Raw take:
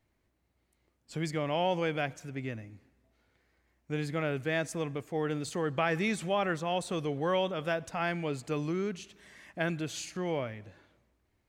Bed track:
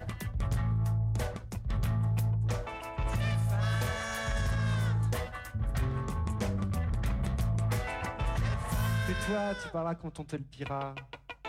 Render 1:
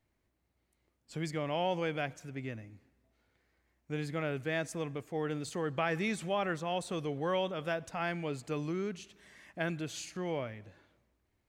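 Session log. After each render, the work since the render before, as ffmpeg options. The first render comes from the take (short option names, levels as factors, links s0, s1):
-af "volume=0.708"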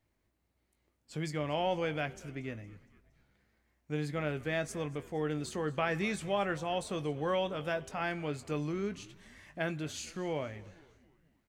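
-filter_complex "[0:a]asplit=2[s0][s1];[s1]adelay=20,volume=0.282[s2];[s0][s2]amix=inputs=2:normalize=0,asplit=5[s3][s4][s5][s6][s7];[s4]adelay=232,afreqshift=-82,volume=0.0891[s8];[s5]adelay=464,afreqshift=-164,volume=0.049[s9];[s6]adelay=696,afreqshift=-246,volume=0.0269[s10];[s7]adelay=928,afreqshift=-328,volume=0.0148[s11];[s3][s8][s9][s10][s11]amix=inputs=5:normalize=0"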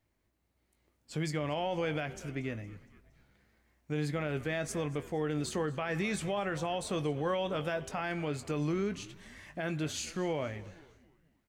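-af "alimiter=level_in=1.5:limit=0.0631:level=0:latency=1:release=69,volume=0.668,dynaudnorm=f=130:g=11:m=1.58"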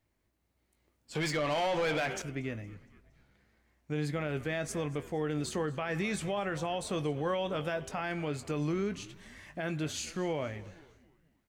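-filter_complex "[0:a]asettb=1/sr,asplit=3[s0][s1][s2];[s0]atrim=end=1.154[s3];[s1]atrim=start=1.15:end=2.22,asetpts=PTS-STARTPTS,afade=t=in:d=0.004:c=qsin,afade=t=out:st=1.066:d=0.004:c=qsin,asplit=2[s4][s5];[s5]highpass=f=720:p=1,volume=10,asoftclip=type=tanh:threshold=0.0668[s6];[s4][s6]amix=inputs=2:normalize=0,lowpass=f=4500:p=1,volume=0.501[s7];[s2]atrim=start=2.216[s8];[s3][s7]acrossfade=d=0.004:c1=hsin:c2=qsin[s9];[s9][s8]acrossfade=d=0.004:c1=qsin:c2=hsin,asettb=1/sr,asplit=3[s10][s11][s12];[s10]atrim=end=2.744[s13];[s11]atrim=start=2.74:end=4.05,asetpts=PTS-STARTPTS,afade=t=in:d=0.004:c=qsin,afade=t=out:st=1.306:d=0.004:c=qsin,highshelf=f=11000:g=-5.5[s14];[s12]atrim=start=4.046[s15];[s13][s14]acrossfade=d=0.004:c1=hsin:c2=qsin[s16];[s16][s15]acrossfade=d=0.004:c1=qsin:c2=hsin"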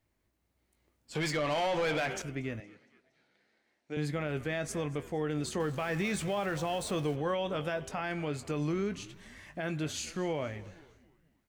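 -filter_complex "[0:a]asettb=1/sr,asplit=3[s0][s1][s2];[s0]atrim=end=2.604[s3];[s1]atrim=start=2.6:end=3.97,asetpts=PTS-STARTPTS,afade=t=in:d=0.004:c=qsin,afade=t=out:st=1.366:d=0.004:c=qsin,highpass=310,equalizer=f=1100:t=q:w=4:g=-7,equalizer=f=4100:t=q:w=4:g=4,equalizer=f=7200:t=q:w=4:g=-5,lowpass=f=8900:w=0.5412,lowpass=f=8900:w=1.3066[s4];[s2]atrim=start=3.966[s5];[s3][s4]acrossfade=d=0.004:c1=hsin:c2=qsin[s6];[s6][s5]acrossfade=d=0.004:c1=qsin:c2=hsin,asettb=1/sr,asplit=3[s7][s8][s9];[s7]atrim=end=5.604[s10];[s8]atrim=start=5.6:end=7.16,asetpts=PTS-STARTPTS,afade=t=in:d=0.004:c=qsin,afade=t=out:st=1.556:d=0.004:c=qsin,aeval=exprs='val(0)+0.5*0.00668*sgn(val(0))':c=same[s11];[s9]atrim=start=7.156[s12];[s10][s11]acrossfade=d=0.004:c1=hsin:c2=qsin[s13];[s13][s12]acrossfade=d=0.004:c1=qsin:c2=hsin"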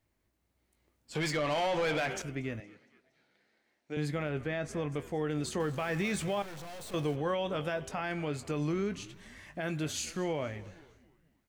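-filter_complex "[0:a]asettb=1/sr,asplit=3[s0][s1][s2];[s0]atrim=end=4.294[s3];[s1]atrim=start=4.29:end=4.92,asetpts=PTS-STARTPTS,afade=t=in:d=0.004:c=qsin,afade=t=out:st=0.626:d=0.004:c=qsin,lowpass=f=3000:p=1[s4];[s2]atrim=start=4.916[s5];[s3][s4]acrossfade=d=0.004:c1=hsin:c2=qsin[s6];[s6][s5]acrossfade=d=0.004:c1=qsin:c2=hsin,asettb=1/sr,asplit=3[s7][s8][s9];[s7]atrim=end=6.424[s10];[s8]atrim=start=6.42:end=6.94,asetpts=PTS-STARTPTS,afade=t=in:d=0.004:c=qsin,afade=t=out:st=0.516:d=0.004:c=qsin,aeval=exprs='(tanh(158*val(0)+0.5)-tanh(0.5))/158':c=same[s11];[s9]atrim=start=6.936[s12];[s10][s11]acrossfade=d=0.004:c1=hsin:c2=qsin[s13];[s13][s12]acrossfade=d=0.004:c1=qsin:c2=hsin,asettb=1/sr,asplit=3[s14][s15][s16];[s14]atrim=end=9.614[s17];[s15]atrim=start=9.61:end=10.24,asetpts=PTS-STARTPTS,afade=t=in:d=0.004:c=qsin,afade=t=out:st=0.626:d=0.004:c=qsin,highshelf=f=8400:g=6[s18];[s16]atrim=start=10.236[s19];[s17][s18]acrossfade=d=0.004:c1=hsin:c2=qsin[s20];[s20][s19]acrossfade=d=0.004:c1=qsin:c2=hsin"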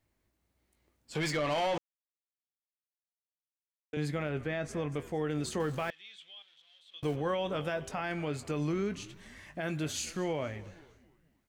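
-filter_complex "[0:a]asettb=1/sr,asplit=3[s0][s1][s2];[s0]atrim=end=5.904[s3];[s1]atrim=start=5.9:end=7.03,asetpts=PTS-STARTPTS,afade=t=in:d=0.004:c=qsin,afade=t=out:st=1.126:d=0.004:c=qsin,bandpass=f=3300:t=q:w=9.6[s4];[s2]atrim=start=7.026[s5];[s3][s4]acrossfade=d=0.004:c1=hsin:c2=qsin[s6];[s6][s5]acrossfade=d=0.004:c1=qsin:c2=hsin,asplit=3[s7][s8][s9];[s7]atrim=end=1.78,asetpts=PTS-STARTPTS,afade=t=out:st=1.776:d=0.004:c=hsin[s10];[s8]atrim=start=1.78:end=3.93,asetpts=PTS-STARTPTS,volume=0[s11];[s9]atrim=start=3.93,asetpts=PTS-STARTPTS,afade=t=in:d=0.004:c=hsin[s12];[s10][s11][s12]concat=n=3:v=0:a=1"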